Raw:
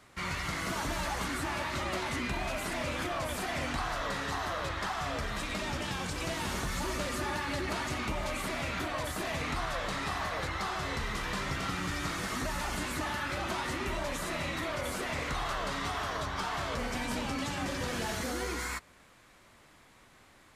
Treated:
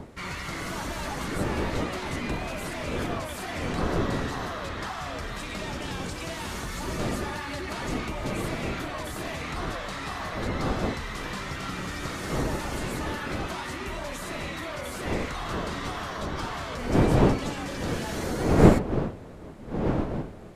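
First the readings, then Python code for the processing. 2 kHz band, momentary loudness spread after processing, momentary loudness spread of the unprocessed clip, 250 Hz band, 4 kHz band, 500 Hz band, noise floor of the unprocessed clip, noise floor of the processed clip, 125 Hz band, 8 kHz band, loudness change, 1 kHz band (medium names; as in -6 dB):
+0.5 dB, 9 LU, 1 LU, +9.0 dB, 0.0 dB, +7.5 dB, -59 dBFS, -38 dBFS, +9.5 dB, 0.0 dB, +4.5 dB, +2.0 dB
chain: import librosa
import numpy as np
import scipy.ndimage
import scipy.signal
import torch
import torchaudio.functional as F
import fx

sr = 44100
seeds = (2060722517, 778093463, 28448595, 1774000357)

y = fx.dmg_wind(x, sr, seeds[0], corner_hz=390.0, level_db=-30.0)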